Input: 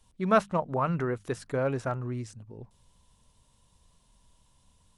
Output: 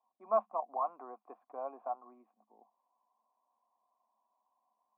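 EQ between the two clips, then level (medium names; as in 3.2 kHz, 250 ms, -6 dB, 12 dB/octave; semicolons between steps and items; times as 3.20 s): cascade formant filter a; rippled Chebyshev high-pass 210 Hz, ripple 3 dB; +4.5 dB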